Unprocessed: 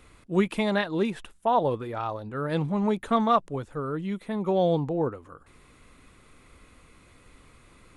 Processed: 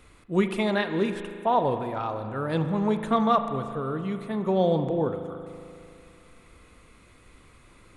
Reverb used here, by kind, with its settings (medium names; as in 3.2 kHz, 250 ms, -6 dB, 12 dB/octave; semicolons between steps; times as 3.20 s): spring tank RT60 2.6 s, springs 37 ms, chirp 50 ms, DRR 8 dB